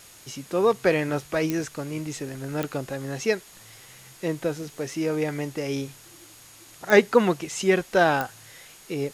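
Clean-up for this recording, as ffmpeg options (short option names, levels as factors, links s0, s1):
-af "adeclick=t=4,bandreject=f=6700:w=30,afwtdn=0.004"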